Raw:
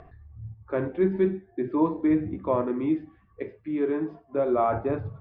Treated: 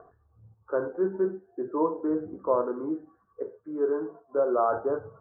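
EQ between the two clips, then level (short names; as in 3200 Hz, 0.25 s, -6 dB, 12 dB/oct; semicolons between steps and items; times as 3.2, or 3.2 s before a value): Chebyshev low-pass 1500 Hz, order 6; tilt +4.5 dB/oct; bell 470 Hz +9.5 dB 0.5 oct; 0.0 dB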